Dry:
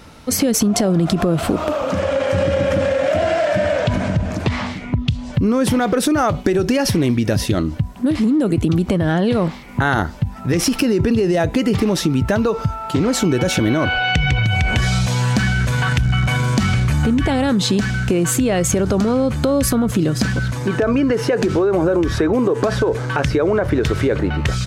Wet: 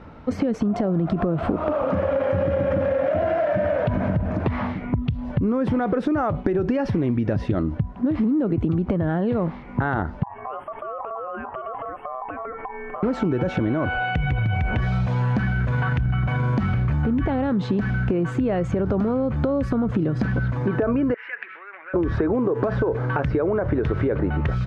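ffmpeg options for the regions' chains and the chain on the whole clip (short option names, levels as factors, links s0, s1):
-filter_complex "[0:a]asettb=1/sr,asplit=3[s0][s1][s2];[s0]atrim=end=10.234[s3];[s1]atrim=start=10.23:end=13.03,asetpts=PTS-STARTPTS,afade=t=in:d=0.004:c=qsin,afade=t=out:st=2.796:d=0.004:c=qsin,acompressor=threshold=0.0631:ratio=16:attack=3.2:release=140:knee=1:detection=peak,asuperstop=centerf=4800:order=20:qfactor=0.69,aeval=exprs='val(0)*sin(2*PI*900*n/s)':c=same[s4];[s2]atrim=start=13.026[s5];[s3][s4]acrossfade=d=0.004:c1=hsin:c2=qsin[s6];[s6][s5]acrossfade=d=0.004:c1=qsin:c2=hsin,asettb=1/sr,asplit=3[s7][s8][s9];[s7]atrim=end=21.144[s10];[s8]atrim=start=21.14:end=21.94,asetpts=PTS-STARTPTS,afade=t=in:d=0.004:c=qsin,afade=t=out:st=0.796:d=0.004:c=qsin,acontrast=61,asuperpass=centerf=2100:order=4:qfactor=2.2[s11];[s9]atrim=start=21.936[s12];[s10][s11]acrossfade=d=0.004:c1=hsin:c2=qsin[s13];[s13][s12]acrossfade=d=0.004:c1=qsin:c2=hsin,acompressor=threshold=0.126:ratio=6,lowpass=1500"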